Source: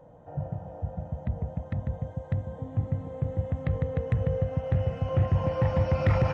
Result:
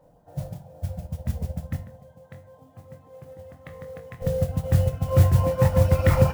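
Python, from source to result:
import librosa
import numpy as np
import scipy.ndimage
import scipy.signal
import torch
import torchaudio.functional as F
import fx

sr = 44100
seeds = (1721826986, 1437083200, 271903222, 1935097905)

y = fx.dereverb_blind(x, sr, rt60_s=1.3)
y = fx.highpass(y, sr, hz=620.0, slope=6, at=(1.76, 4.22))
y = fx.mod_noise(y, sr, seeds[0], snr_db=22)
y = fx.doubler(y, sr, ms=23.0, db=-8)
y = fx.room_shoebox(y, sr, seeds[1], volume_m3=85.0, walls='mixed', distance_m=0.34)
y = fx.upward_expand(y, sr, threshold_db=-41.0, expansion=1.5)
y = y * 10.0 ** (6.5 / 20.0)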